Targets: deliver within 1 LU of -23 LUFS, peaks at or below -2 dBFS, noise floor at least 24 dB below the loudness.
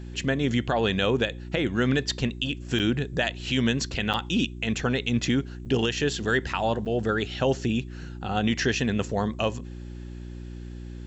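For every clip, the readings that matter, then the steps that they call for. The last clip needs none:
dropouts 4; longest dropout 7.8 ms; hum 60 Hz; harmonics up to 360 Hz; hum level -36 dBFS; loudness -26.0 LUFS; peak -12.0 dBFS; loudness target -23.0 LUFS
-> interpolate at 2.79/4.13/5.65/6.85, 7.8 ms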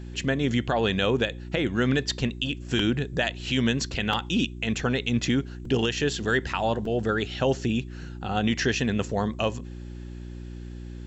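dropouts 0; hum 60 Hz; harmonics up to 360 Hz; hum level -36 dBFS
-> de-hum 60 Hz, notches 6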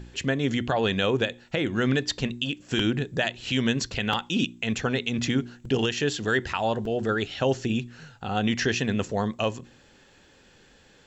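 hum none; loudness -26.5 LUFS; peak -11.0 dBFS; loudness target -23.0 LUFS
-> gain +3.5 dB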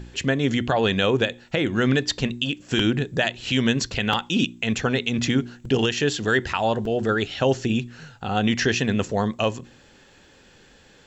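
loudness -23.0 LUFS; peak -7.5 dBFS; noise floor -53 dBFS

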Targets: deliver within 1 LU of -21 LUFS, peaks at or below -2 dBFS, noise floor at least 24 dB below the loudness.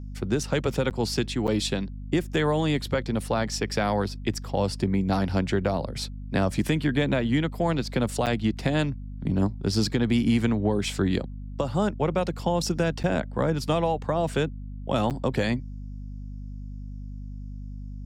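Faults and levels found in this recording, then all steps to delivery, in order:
dropouts 5; longest dropout 8.2 ms; hum 50 Hz; harmonics up to 250 Hz; hum level -34 dBFS; loudness -26.5 LUFS; peak -11.5 dBFS; loudness target -21.0 LUFS
-> interpolate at 0.9/1.47/8.26/13.03/15.1, 8.2 ms; notches 50/100/150/200/250 Hz; gain +5.5 dB

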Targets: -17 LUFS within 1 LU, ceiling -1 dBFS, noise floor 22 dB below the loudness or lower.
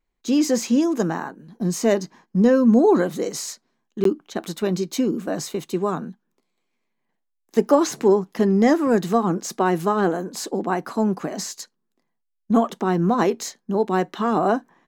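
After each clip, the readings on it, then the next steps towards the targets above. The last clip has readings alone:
dropouts 1; longest dropout 13 ms; loudness -21.5 LUFS; peak -4.0 dBFS; loudness target -17.0 LUFS
-> interpolate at 4.04, 13 ms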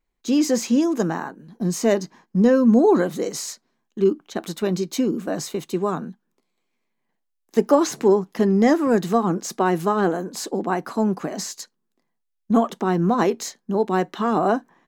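dropouts 0; loudness -21.5 LUFS; peak -4.0 dBFS; loudness target -17.0 LUFS
-> gain +4.5 dB; limiter -1 dBFS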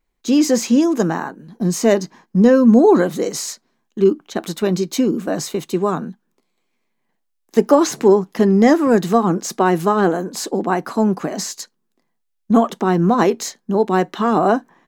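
loudness -17.0 LUFS; peak -1.0 dBFS; noise floor -71 dBFS

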